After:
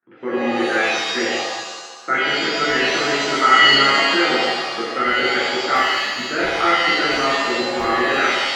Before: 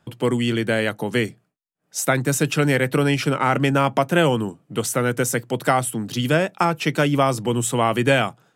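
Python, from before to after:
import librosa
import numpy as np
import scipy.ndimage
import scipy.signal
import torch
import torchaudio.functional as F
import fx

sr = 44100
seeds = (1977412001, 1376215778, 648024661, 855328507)

y = fx.level_steps(x, sr, step_db=21)
y = fx.cabinet(y, sr, low_hz=330.0, low_slope=12, high_hz=2000.0, hz=(370.0, 550.0, 890.0, 1300.0, 1900.0), db=(6, -9, -5, 10, 8))
y = fx.buffer_crackle(y, sr, first_s=1.0, period_s=0.34, block=64, kind='repeat')
y = fx.rev_shimmer(y, sr, seeds[0], rt60_s=1.3, semitones=7, shimmer_db=-2, drr_db=-8.0)
y = F.gain(torch.from_numpy(y), -6.0).numpy()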